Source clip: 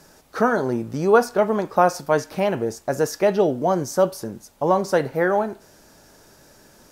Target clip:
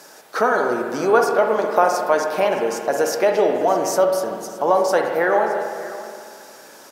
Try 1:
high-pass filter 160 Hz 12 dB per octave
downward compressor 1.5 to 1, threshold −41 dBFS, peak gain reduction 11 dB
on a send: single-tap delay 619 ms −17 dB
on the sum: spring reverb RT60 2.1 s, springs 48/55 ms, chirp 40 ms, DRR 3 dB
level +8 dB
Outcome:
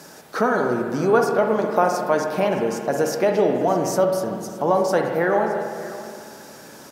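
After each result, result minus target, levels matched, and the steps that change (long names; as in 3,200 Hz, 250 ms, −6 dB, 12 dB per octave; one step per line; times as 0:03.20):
125 Hz band +11.0 dB; downward compressor: peak gain reduction +3.5 dB
change: high-pass filter 410 Hz 12 dB per octave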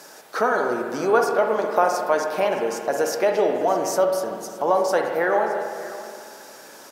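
downward compressor: peak gain reduction +3 dB
change: downward compressor 1.5 to 1, threshold −32.5 dBFS, peak gain reduction 7.5 dB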